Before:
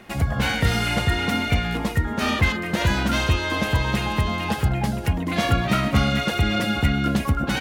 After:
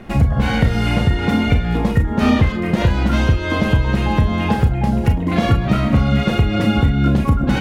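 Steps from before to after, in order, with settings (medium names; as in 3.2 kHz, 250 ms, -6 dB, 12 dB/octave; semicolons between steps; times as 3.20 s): tilt EQ -2.5 dB/octave; compression, threshold -16 dBFS, peak gain reduction 10.5 dB; reverberation RT60 0.15 s, pre-delay 28 ms, DRR 5.5 dB; trim +4.5 dB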